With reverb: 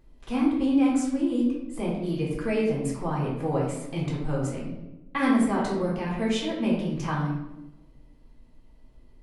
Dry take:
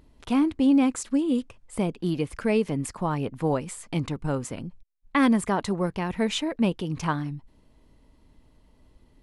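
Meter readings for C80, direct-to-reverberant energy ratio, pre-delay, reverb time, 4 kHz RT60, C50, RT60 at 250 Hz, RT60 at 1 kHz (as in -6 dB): 5.5 dB, -5.0 dB, 3 ms, 1.0 s, 0.65 s, 2.0 dB, 1.5 s, 0.90 s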